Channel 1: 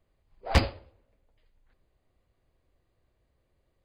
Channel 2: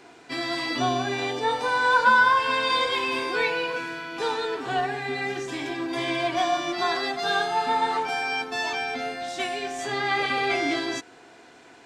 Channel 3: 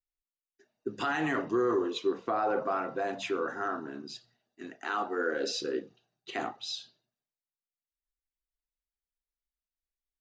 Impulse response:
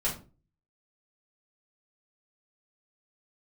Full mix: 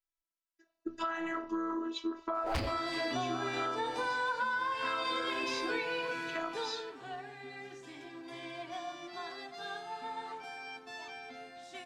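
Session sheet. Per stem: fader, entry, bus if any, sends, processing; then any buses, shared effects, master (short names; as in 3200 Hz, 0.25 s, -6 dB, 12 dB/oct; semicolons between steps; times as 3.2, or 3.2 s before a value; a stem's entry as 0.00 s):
-7.5 dB, 2.00 s, no send, sample leveller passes 3
6.33 s -5.5 dB -> 7.03 s -17.5 dB, 2.35 s, no send, dry
-2.0 dB, 0.00 s, no send, bell 1200 Hz +8 dB 0.85 oct; robotiser 329 Hz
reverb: off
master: compressor 6:1, threshold -31 dBFS, peak gain reduction 12 dB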